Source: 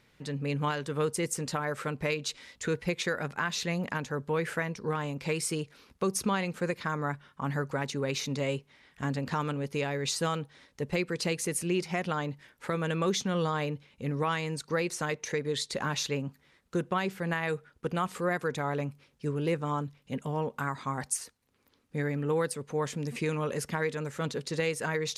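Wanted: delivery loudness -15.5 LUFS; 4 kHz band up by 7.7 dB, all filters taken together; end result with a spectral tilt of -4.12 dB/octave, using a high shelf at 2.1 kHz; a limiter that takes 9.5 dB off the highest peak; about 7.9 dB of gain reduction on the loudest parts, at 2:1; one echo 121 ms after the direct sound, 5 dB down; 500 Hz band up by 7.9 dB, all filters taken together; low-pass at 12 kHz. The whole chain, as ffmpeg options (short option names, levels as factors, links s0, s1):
-af "lowpass=12000,equalizer=f=500:t=o:g=8.5,highshelf=f=2100:g=4.5,equalizer=f=4000:t=o:g=5,acompressor=threshold=0.0224:ratio=2,alimiter=level_in=1.12:limit=0.0631:level=0:latency=1,volume=0.891,aecho=1:1:121:0.562,volume=8.91"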